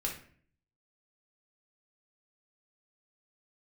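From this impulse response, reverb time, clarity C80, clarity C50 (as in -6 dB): 0.50 s, 12.0 dB, 6.5 dB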